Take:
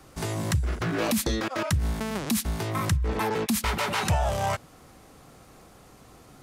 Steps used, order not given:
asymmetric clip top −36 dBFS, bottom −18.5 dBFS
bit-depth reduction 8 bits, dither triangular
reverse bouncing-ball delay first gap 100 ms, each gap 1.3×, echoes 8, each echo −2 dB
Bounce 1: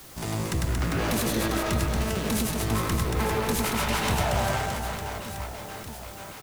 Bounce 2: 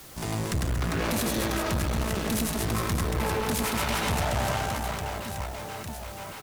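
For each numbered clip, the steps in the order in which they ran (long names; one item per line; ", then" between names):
asymmetric clip, then reverse bouncing-ball delay, then bit-depth reduction
reverse bouncing-ball delay, then bit-depth reduction, then asymmetric clip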